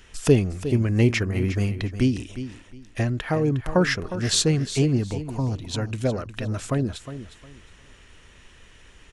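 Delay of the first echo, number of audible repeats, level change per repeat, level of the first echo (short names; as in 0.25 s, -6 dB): 0.359 s, 2, -13.0 dB, -12.0 dB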